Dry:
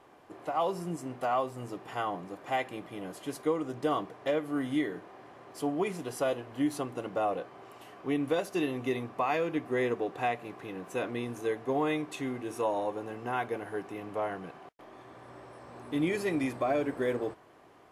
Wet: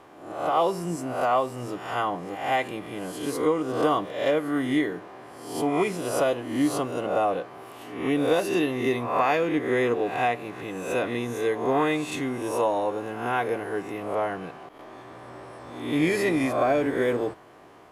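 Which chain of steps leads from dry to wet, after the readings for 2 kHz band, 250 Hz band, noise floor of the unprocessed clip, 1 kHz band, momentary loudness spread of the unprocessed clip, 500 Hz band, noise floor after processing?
+8.0 dB, +6.0 dB, -57 dBFS, +7.0 dB, 17 LU, +7.0 dB, -46 dBFS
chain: reverse spectral sustain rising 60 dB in 0.68 s; trim +5 dB

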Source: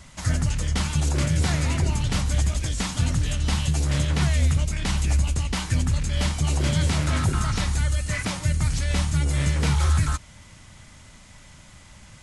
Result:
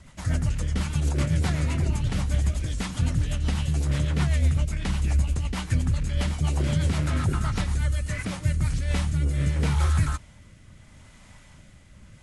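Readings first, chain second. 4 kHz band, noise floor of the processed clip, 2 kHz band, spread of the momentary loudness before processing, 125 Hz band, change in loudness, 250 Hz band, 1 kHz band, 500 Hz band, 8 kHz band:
-6.5 dB, -51 dBFS, -4.5 dB, 4 LU, -1.5 dB, -2.0 dB, -1.5 dB, -4.0 dB, -2.5 dB, -8.0 dB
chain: rotary cabinet horn 8 Hz, later 0.75 Hz, at 8.23 s; peaking EQ 5.8 kHz -6 dB 1.9 oct

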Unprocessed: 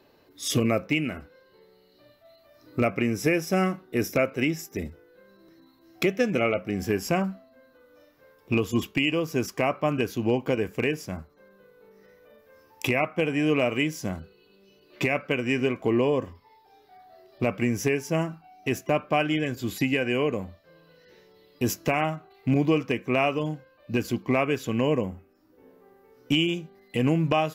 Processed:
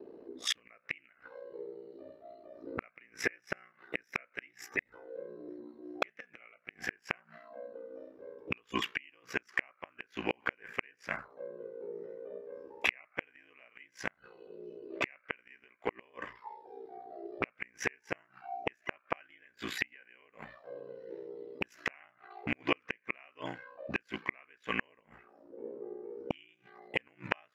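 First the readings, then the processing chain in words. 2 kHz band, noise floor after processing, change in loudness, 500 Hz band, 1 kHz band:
-6.0 dB, -73 dBFS, -13.5 dB, -15.5 dB, -11.5 dB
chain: auto-wah 360–1800 Hz, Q 3.2, up, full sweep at -29 dBFS; ring modulator 30 Hz; inverted gate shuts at -33 dBFS, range -36 dB; trim +17.5 dB

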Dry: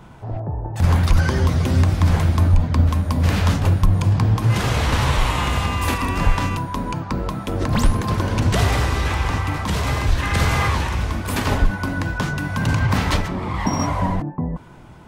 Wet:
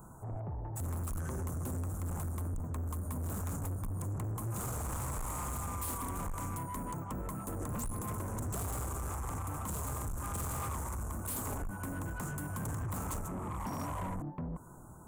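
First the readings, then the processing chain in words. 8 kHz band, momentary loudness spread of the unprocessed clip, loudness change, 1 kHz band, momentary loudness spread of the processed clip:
-7.5 dB, 8 LU, -18.0 dB, -16.5 dB, 3 LU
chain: elliptic band-stop 1.3–7.3 kHz, stop band 40 dB; pre-emphasis filter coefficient 0.8; compression 1.5:1, threshold -40 dBFS, peak gain reduction 6.5 dB; saturation -39 dBFS, distortion -9 dB; trim +5 dB

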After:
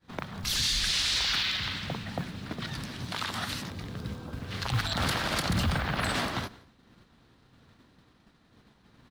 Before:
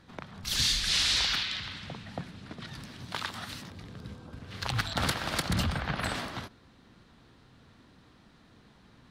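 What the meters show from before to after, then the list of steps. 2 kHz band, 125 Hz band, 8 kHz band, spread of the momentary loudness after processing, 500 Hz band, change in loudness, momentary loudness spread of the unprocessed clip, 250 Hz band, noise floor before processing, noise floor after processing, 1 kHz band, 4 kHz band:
+2.0 dB, +3.0 dB, 0.0 dB, 14 LU, +3.0 dB, 0.0 dB, 21 LU, +3.0 dB, -59 dBFS, -63 dBFS, +2.5 dB, +0.5 dB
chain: expander -50 dBFS; peak limiter -25.5 dBFS, peak gain reduction 10 dB; modulation noise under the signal 29 dB; on a send: feedback delay 172 ms, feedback 15%, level -24 dB; on the sum: trim +6.5 dB

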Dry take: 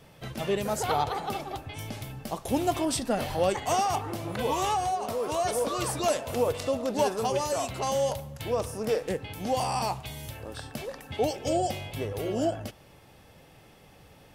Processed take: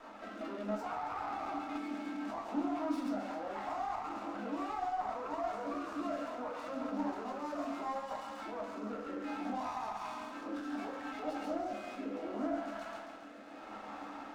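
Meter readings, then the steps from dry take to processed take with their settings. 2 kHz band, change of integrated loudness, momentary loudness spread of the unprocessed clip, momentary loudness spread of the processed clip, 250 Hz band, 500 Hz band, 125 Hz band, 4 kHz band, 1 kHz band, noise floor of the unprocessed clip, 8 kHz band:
-7.5 dB, -10.0 dB, 11 LU, 7 LU, -4.5 dB, -13.0 dB, -21.5 dB, -17.0 dB, -8.5 dB, -55 dBFS, -24.0 dB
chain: rotary cabinet horn 0.7 Hz; in parallel at -6.5 dB: wavefolder -27.5 dBFS; on the sum: peaking EQ 1.3 kHz +13.5 dB 0.92 oct; band-stop 3.2 kHz, Q 9.3; on a send: feedback echo behind a high-pass 137 ms, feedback 56%, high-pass 1.4 kHz, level -6 dB; on the sum: compression, threshold -36 dBFS, peak gain reduction 18 dB; peak limiter -35 dBFS, peak gain reduction 11 dB; rippled Chebyshev high-pass 200 Hz, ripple 9 dB; simulated room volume 290 m³, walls furnished, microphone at 2.8 m; dynamic bell 290 Hz, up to +6 dB, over -56 dBFS, Q 4.5; steep low-pass 6.5 kHz; sliding maximum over 5 samples; trim +1.5 dB

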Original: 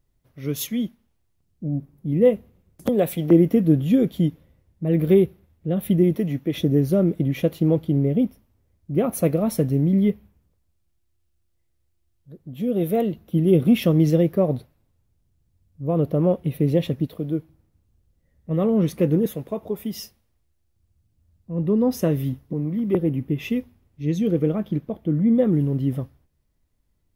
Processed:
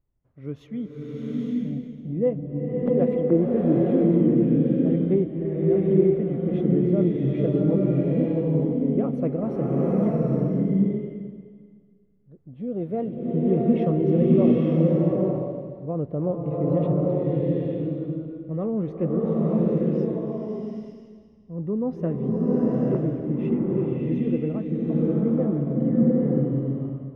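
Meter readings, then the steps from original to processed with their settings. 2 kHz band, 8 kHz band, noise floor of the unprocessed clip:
no reading, under -30 dB, -69 dBFS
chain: low-pass 1.4 kHz 12 dB/octave; swelling reverb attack 880 ms, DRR -5 dB; trim -6.5 dB

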